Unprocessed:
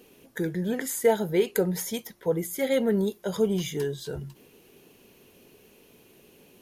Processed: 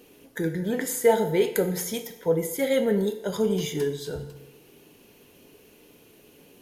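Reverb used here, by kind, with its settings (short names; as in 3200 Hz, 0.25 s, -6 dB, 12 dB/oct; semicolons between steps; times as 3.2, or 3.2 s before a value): FDN reverb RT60 0.95 s, low-frequency decay 0.75×, high-frequency decay 0.85×, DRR 7 dB; gain +1 dB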